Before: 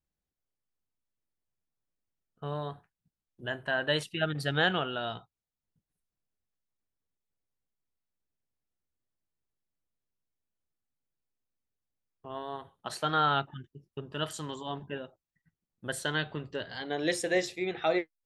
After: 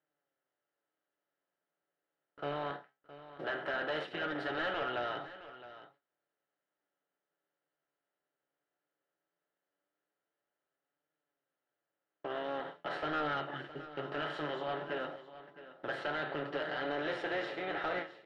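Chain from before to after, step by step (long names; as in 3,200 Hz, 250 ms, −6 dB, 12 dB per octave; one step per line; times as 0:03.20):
compressor on every frequency bin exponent 0.4
high-pass filter 270 Hz 12 dB per octave
noise gate −40 dBFS, range −37 dB
comb filter 7 ms, depth 41%
in parallel at +2 dB: downward compressor, threshold −43 dBFS, peak gain reduction 23.5 dB
on the sum: flanger 0.18 Hz, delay 6.4 ms, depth 8.7 ms, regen +46%
hard clipping −23.5 dBFS, distortion −11 dB
high-frequency loss of the air 330 metres
on a send: single-tap delay 665 ms −15 dB
on the sum: every ending faded ahead of time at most 210 dB per second
level −5 dB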